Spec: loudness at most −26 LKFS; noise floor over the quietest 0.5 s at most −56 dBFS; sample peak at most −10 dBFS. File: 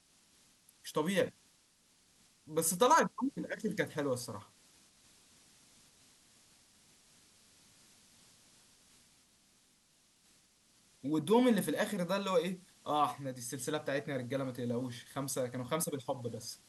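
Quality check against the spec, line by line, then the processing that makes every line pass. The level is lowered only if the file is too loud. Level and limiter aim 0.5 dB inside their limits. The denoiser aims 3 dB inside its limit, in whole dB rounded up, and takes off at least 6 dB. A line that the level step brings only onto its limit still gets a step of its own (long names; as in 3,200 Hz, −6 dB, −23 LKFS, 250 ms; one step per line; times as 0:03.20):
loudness −34.5 LKFS: in spec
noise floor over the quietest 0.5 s −69 dBFS: in spec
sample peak −16.0 dBFS: in spec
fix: no processing needed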